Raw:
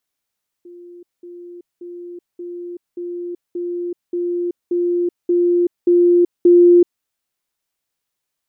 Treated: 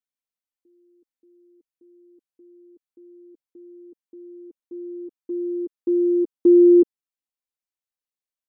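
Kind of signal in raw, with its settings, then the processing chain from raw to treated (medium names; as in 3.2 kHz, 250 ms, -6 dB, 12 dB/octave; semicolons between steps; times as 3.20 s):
level ladder 350 Hz -36 dBFS, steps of 3 dB, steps 11, 0.38 s 0.20 s
comb 3.9 ms, depth 57%; upward expansion 2.5:1, over -23 dBFS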